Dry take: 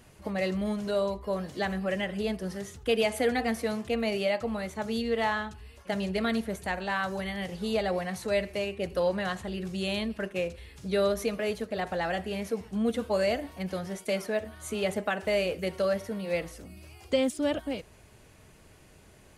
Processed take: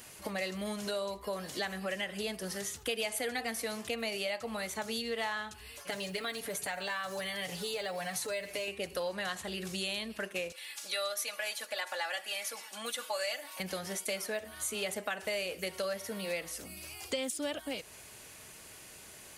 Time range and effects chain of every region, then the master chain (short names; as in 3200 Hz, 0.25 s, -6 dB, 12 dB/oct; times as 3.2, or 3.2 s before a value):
5.75–8.68 short-mantissa float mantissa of 6-bit + compressor 2:1, threshold -34 dBFS + comb 6.9 ms, depth 63%
10.52–13.6 HPF 780 Hz + comb 3.5 ms, depth 67%
whole clip: tilt +3 dB/oct; compressor 3:1, threshold -39 dBFS; gain +3.5 dB